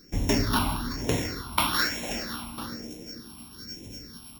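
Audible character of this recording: a buzz of ramps at a fixed pitch in blocks of 8 samples; phasing stages 6, 1.1 Hz, lowest notch 460–1300 Hz

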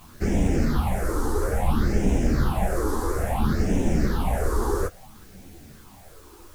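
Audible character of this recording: phasing stages 6, 0.59 Hz, lowest notch 170–1200 Hz; a quantiser's noise floor 10-bit, dither triangular; a shimmering, thickened sound

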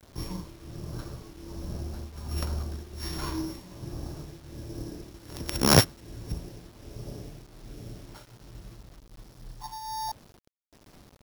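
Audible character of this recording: a buzz of ramps at a fixed pitch in blocks of 8 samples; tremolo triangle 1.3 Hz, depth 85%; a quantiser's noise floor 10-bit, dither none

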